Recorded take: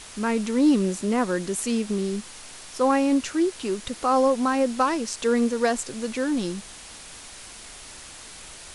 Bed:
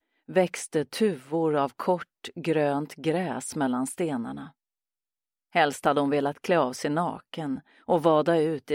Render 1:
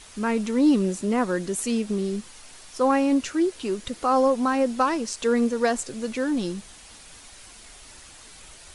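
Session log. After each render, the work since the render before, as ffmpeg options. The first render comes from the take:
ffmpeg -i in.wav -af "afftdn=noise_reduction=6:noise_floor=-43" out.wav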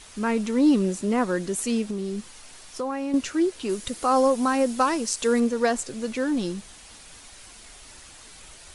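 ffmpeg -i in.wav -filter_complex "[0:a]asettb=1/sr,asplit=3[link_01][link_02][link_03];[link_01]atrim=end=1.864[link_04];[link_02]atrim=start=1.86:end=3.14,asetpts=PTS-STARTPTS,afade=type=in:duration=0.004:curve=qsin,afade=type=out:start_time=1.276:duration=0.004:curve=qsin,acompressor=threshold=-25dB:ratio=6:attack=3.2:release=140:knee=1:detection=peak[link_05];[link_03]atrim=start=3.136[link_06];[link_04][link_05]acrossfade=duration=0.004:curve1=hsin:curve2=qsin[link_07];[link_07][link_06]acrossfade=duration=0.004:curve1=qsin:curve2=hsin,asettb=1/sr,asplit=3[link_08][link_09][link_10];[link_08]atrim=end=3.694[link_11];[link_09]atrim=start=3.69:end=5.4,asetpts=PTS-STARTPTS,afade=type=in:duration=0.004:curve=qsin,afade=type=out:start_time=1.706:duration=0.004:curve=qsin,highshelf=frequency=7600:gain=12[link_12];[link_10]atrim=start=5.396[link_13];[link_11][link_12]acrossfade=duration=0.004:curve1=hsin:curve2=qsin[link_14];[link_14][link_13]acrossfade=duration=0.004:curve1=qsin:curve2=hsin" out.wav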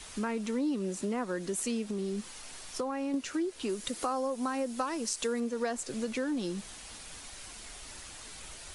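ffmpeg -i in.wav -filter_complex "[0:a]acrossover=split=170|720|5200[link_01][link_02][link_03][link_04];[link_01]alimiter=level_in=16dB:limit=-24dB:level=0:latency=1:release=439,volume=-16dB[link_05];[link_05][link_02][link_03][link_04]amix=inputs=4:normalize=0,acompressor=threshold=-31dB:ratio=4" out.wav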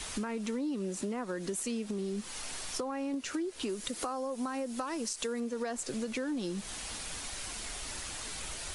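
ffmpeg -i in.wav -filter_complex "[0:a]asplit=2[link_01][link_02];[link_02]alimiter=level_in=1.5dB:limit=-24dB:level=0:latency=1:release=112,volume=-1.5dB,volume=1dB[link_03];[link_01][link_03]amix=inputs=2:normalize=0,acompressor=threshold=-35dB:ratio=3" out.wav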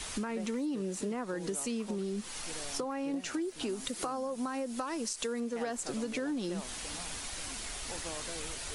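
ffmpeg -i in.wav -i bed.wav -filter_complex "[1:a]volume=-23.5dB[link_01];[0:a][link_01]amix=inputs=2:normalize=0" out.wav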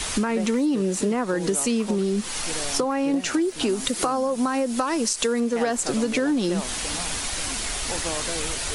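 ffmpeg -i in.wav -af "volume=12dB" out.wav

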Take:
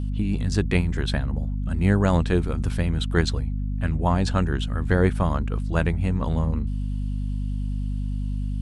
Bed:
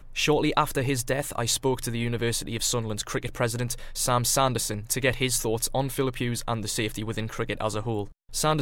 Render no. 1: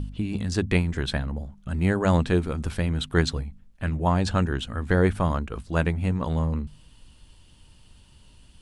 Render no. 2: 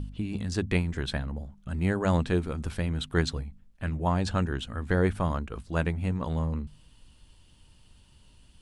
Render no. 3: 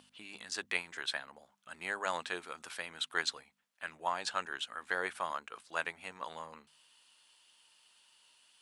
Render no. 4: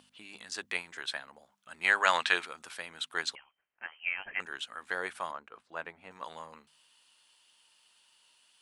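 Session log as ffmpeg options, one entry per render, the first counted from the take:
ffmpeg -i in.wav -af "bandreject=frequency=50:width_type=h:width=4,bandreject=frequency=100:width_type=h:width=4,bandreject=frequency=150:width_type=h:width=4,bandreject=frequency=200:width_type=h:width=4,bandreject=frequency=250:width_type=h:width=4" out.wav
ffmpeg -i in.wav -af "volume=-4dB" out.wav
ffmpeg -i in.wav -af "highpass=990" out.wav
ffmpeg -i in.wav -filter_complex "[0:a]asplit=3[link_01][link_02][link_03];[link_01]afade=type=out:start_time=1.83:duration=0.02[link_04];[link_02]equalizer=frequency=2400:width=0.33:gain=13.5,afade=type=in:start_time=1.83:duration=0.02,afade=type=out:start_time=2.45:duration=0.02[link_05];[link_03]afade=type=in:start_time=2.45:duration=0.02[link_06];[link_04][link_05][link_06]amix=inputs=3:normalize=0,asettb=1/sr,asplit=3[link_07][link_08][link_09];[link_07]atrim=end=3.354[link_10];[link_08]atrim=start=3.35:end=4.4,asetpts=PTS-STARTPTS,afade=type=in:duration=0.004:curve=qsin,afade=type=out:start_time=1.046:duration=0.004:curve=qsin,lowpass=frequency=2800:width_type=q:width=0.5098,lowpass=frequency=2800:width_type=q:width=0.6013,lowpass=frequency=2800:width_type=q:width=0.9,lowpass=frequency=2800:width_type=q:width=2.563,afreqshift=-3300[link_11];[link_09]atrim=start=4.396[link_12];[link_10][link_11]acrossfade=duration=0.004:curve1=hsin:curve2=qsin[link_13];[link_13][link_12]acrossfade=duration=0.004:curve1=qsin:curve2=hsin,asettb=1/sr,asplit=3[link_14][link_15][link_16];[link_14]atrim=end=5.314[link_17];[link_15]atrim=start=5.31:end=6.11,asetpts=PTS-STARTPTS,afade=type=in:duration=0.004:curve=qsin,afade=type=out:start_time=0.796:duration=0.004:curve=qsin,lowpass=frequency=1100:poles=1[link_18];[link_16]atrim=start=6.106[link_19];[link_17][link_18]acrossfade=duration=0.004:curve1=hsin:curve2=qsin[link_20];[link_20][link_19]acrossfade=duration=0.004:curve1=qsin:curve2=hsin" out.wav

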